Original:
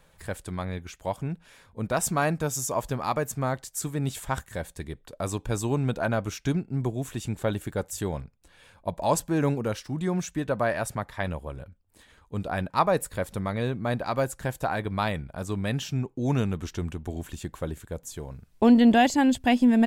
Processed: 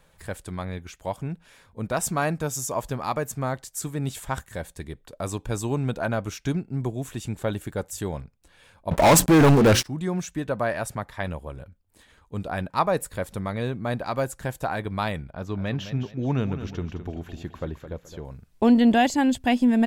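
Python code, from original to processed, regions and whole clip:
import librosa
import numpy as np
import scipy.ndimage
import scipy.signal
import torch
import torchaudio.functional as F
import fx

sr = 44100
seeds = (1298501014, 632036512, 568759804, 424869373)

y = fx.chain(x, sr, fx.hum_notches(base_hz=60, count=6),
    fx.leveller(passes=5), at=(8.91, 9.84))
y = fx.chain(y, sr, fx.moving_average(points=5),
    fx.echo_feedback(ms=213, feedback_pct=31, wet_db=-11.0), at=(15.3, 18.25))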